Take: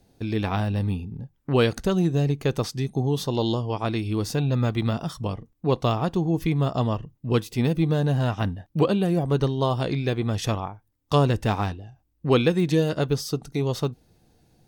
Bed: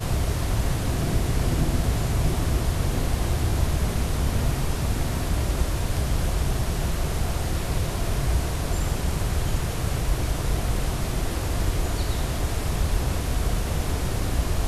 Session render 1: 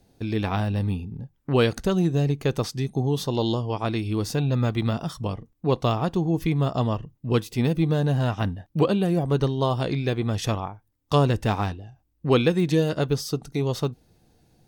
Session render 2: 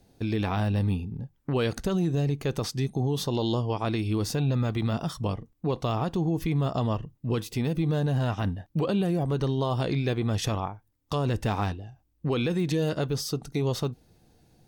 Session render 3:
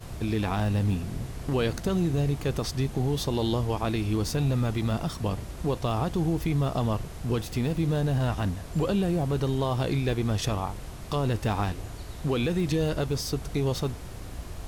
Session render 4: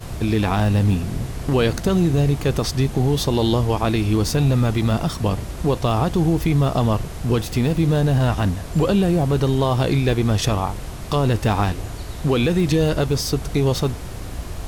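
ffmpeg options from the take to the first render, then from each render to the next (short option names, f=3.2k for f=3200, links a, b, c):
-af anull
-af "alimiter=limit=-18dB:level=0:latency=1:release=35"
-filter_complex "[1:a]volume=-14dB[a];[0:a][a]amix=inputs=2:normalize=0"
-af "volume=8dB"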